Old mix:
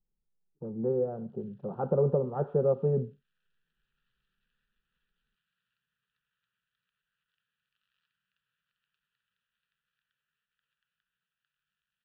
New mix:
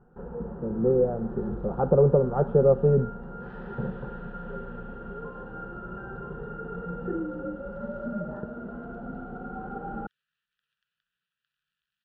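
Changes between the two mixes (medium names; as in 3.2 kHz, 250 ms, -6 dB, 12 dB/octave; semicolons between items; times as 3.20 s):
speech +6.5 dB; first sound: unmuted; second sound: remove distance through air 170 m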